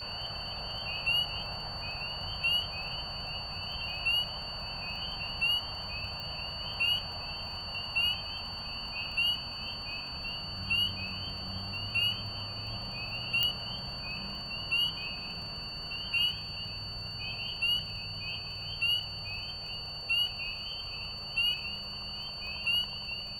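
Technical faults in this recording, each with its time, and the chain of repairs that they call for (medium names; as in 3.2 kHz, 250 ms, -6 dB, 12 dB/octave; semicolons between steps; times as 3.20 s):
crackle 38 per s -43 dBFS
whine 4.5 kHz -39 dBFS
6.20 s: pop
13.43 s: pop -13 dBFS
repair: de-click; band-stop 4.5 kHz, Q 30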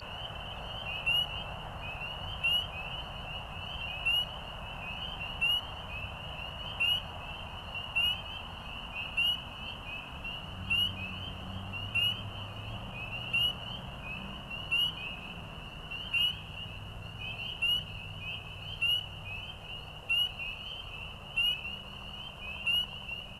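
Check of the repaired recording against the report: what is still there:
nothing left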